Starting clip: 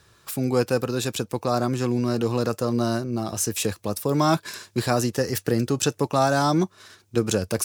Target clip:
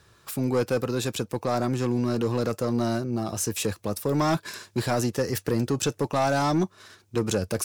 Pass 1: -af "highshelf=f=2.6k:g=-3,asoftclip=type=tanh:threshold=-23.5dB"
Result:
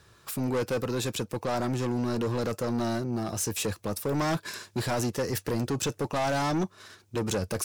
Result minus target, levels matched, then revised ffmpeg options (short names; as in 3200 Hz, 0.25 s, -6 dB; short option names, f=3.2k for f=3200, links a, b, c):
soft clip: distortion +7 dB
-af "highshelf=f=2.6k:g=-3,asoftclip=type=tanh:threshold=-16dB"